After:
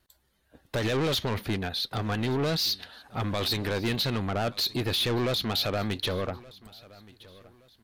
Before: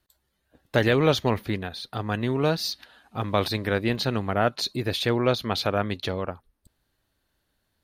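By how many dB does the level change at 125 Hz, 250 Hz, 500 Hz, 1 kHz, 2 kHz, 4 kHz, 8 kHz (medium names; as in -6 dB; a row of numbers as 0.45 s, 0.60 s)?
-2.5 dB, -3.5 dB, -5.5 dB, -5.5 dB, -4.5 dB, +2.0 dB, +1.0 dB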